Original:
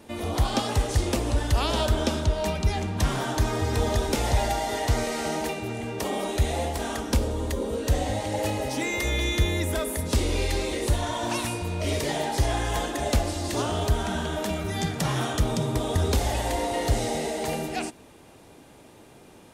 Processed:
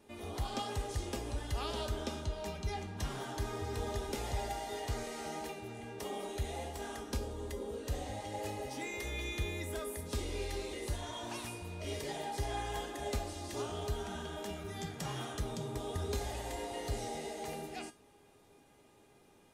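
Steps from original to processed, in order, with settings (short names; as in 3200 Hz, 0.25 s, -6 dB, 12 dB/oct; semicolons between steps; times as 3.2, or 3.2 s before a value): resonator 410 Hz, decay 0.29 s, harmonics all, mix 80%; gain -1.5 dB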